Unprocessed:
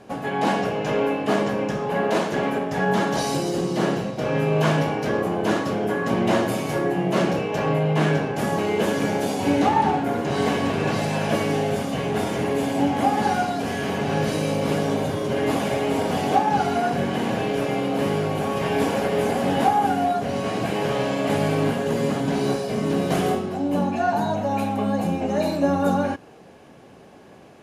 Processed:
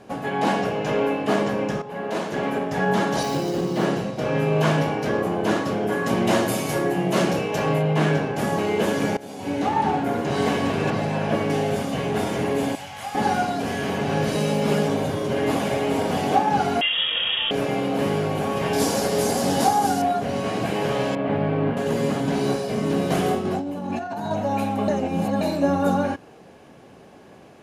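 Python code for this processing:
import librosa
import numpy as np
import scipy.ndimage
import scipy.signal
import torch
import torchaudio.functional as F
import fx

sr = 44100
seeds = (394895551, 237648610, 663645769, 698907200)

y = fx.median_filter(x, sr, points=5, at=(3.23, 3.85))
y = fx.high_shelf(y, sr, hz=4800.0, db=8.5, at=(5.92, 7.82))
y = fx.high_shelf(y, sr, hz=3900.0, db=-11.5, at=(10.9, 11.5))
y = fx.tone_stack(y, sr, knobs='10-0-10', at=(12.75, 13.15))
y = fx.comb(y, sr, ms=4.9, depth=0.65, at=(14.35, 14.88))
y = fx.freq_invert(y, sr, carrier_hz=3500, at=(16.81, 17.51))
y = fx.high_shelf_res(y, sr, hz=3700.0, db=10.0, q=1.5, at=(18.73, 20.02))
y = fx.air_absorb(y, sr, metres=480.0, at=(21.15, 21.77))
y = fx.over_compress(y, sr, threshold_db=-28.0, ratio=-1.0, at=(23.45, 24.31))
y = fx.edit(y, sr, fx.fade_in_from(start_s=1.82, length_s=0.8, floor_db=-12.0),
    fx.fade_in_from(start_s=9.17, length_s=0.85, floor_db=-18.5),
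    fx.reverse_span(start_s=24.88, length_s=0.53), tone=tone)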